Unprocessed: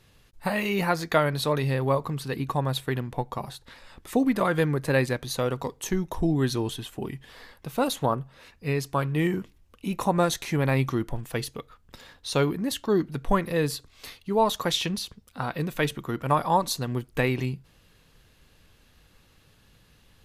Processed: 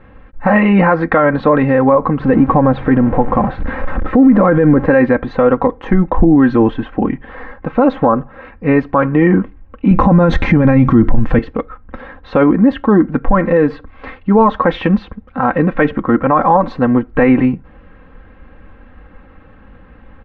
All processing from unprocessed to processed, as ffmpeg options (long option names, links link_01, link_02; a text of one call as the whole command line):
ffmpeg -i in.wav -filter_complex "[0:a]asettb=1/sr,asplit=3[link_01][link_02][link_03];[link_01]atrim=end=2.204[link_04];[link_02]atrim=start=2.2:end=4.86,asetpts=PTS-STARTPTS,afade=type=in:duration=0.004:curve=qsin,afade=type=out:start_time=2.656:duration=0.004:curve=qsin,aeval=exprs='val(0)+0.5*0.0188*sgn(val(0))':channel_layout=same,tiltshelf=frequency=640:gain=4[link_05];[link_03]atrim=start=4.856[link_06];[link_04][link_05]acrossfade=duration=0.004:curve1=hsin:curve2=qsin[link_07];[link_07][link_06]acrossfade=duration=0.004:curve1=qsin:curve2=hsin,asettb=1/sr,asplit=3[link_08][link_09][link_10];[link_08]atrim=end=9.914[link_11];[link_09]atrim=start=9.91:end=11.39,asetpts=PTS-STARTPTS,afade=type=in:duration=0.004:curve=qsin,afade=type=out:start_time=1.476:duration=0.004:curve=qsin,bass=frequency=250:gain=12,treble=frequency=4000:gain=13,acontrast=31[link_12];[link_10]atrim=start=11.386[link_13];[link_11][link_12]acrossfade=duration=0.004:curve1=hsin:curve2=qsin[link_14];[link_14][link_13]acrossfade=duration=0.004:curve1=qsin:curve2=hsin,lowpass=frequency=1800:width=0.5412,lowpass=frequency=1800:width=1.3066,aecho=1:1:3.8:0.7,alimiter=level_in=18.5dB:limit=-1dB:release=50:level=0:latency=1,volume=-1dB" out.wav